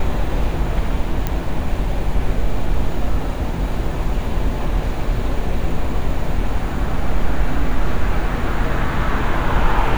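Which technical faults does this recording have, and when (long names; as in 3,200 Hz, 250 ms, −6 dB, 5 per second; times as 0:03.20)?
0:01.27: click −7 dBFS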